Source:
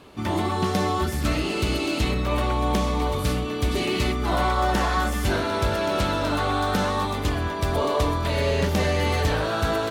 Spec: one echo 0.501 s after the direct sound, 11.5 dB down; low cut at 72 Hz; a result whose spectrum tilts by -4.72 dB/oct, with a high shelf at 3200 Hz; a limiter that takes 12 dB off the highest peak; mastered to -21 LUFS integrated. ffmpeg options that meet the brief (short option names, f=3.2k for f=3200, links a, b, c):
-af "highpass=72,highshelf=f=3.2k:g=3,alimiter=limit=-22dB:level=0:latency=1,aecho=1:1:501:0.266,volume=9dB"